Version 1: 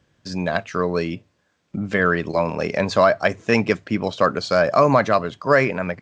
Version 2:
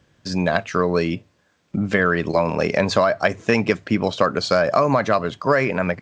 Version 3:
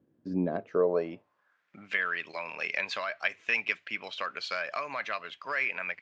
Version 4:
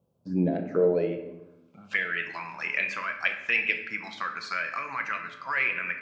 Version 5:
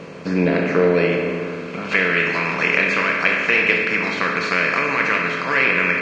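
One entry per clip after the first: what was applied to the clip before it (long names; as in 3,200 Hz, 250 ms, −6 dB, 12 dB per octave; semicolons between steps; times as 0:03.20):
downward compressor, threshold −17 dBFS, peak gain reduction 7.5 dB; level +4 dB
band-pass filter sweep 290 Hz → 2,500 Hz, 0:00.43–0:01.94; level −1.5 dB
phaser swept by the level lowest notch 300 Hz, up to 1,200 Hz, full sweep at −25.5 dBFS; rectangular room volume 410 cubic metres, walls mixed, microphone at 0.72 metres; level +4 dB
compressor on every frequency bin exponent 0.4; level +4 dB; Ogg Vorbis 32 kbit/s 22,050 Hz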